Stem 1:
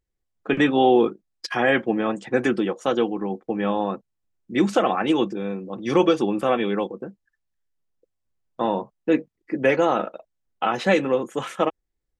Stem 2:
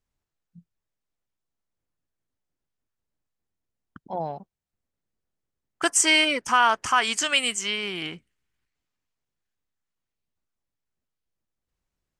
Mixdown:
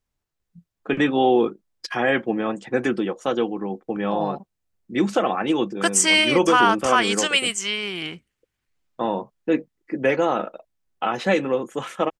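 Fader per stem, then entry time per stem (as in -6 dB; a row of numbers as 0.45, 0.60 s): -1.0, +2.0 dB; 0.40, 0.00 s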